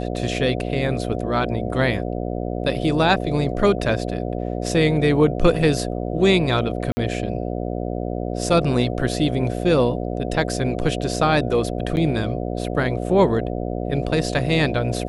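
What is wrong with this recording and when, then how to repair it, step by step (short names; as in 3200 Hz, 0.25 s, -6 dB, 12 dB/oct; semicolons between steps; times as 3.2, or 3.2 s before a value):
buzz 60 Hz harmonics 12 -26 dBFS
6.92–6.97 gap 50 ms
11.96–11.97 gap 9.6 ms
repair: de-hum 60 Hz, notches 12; interpolate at 6.92, 50 ms; interpolate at 11.96, 9.6 ms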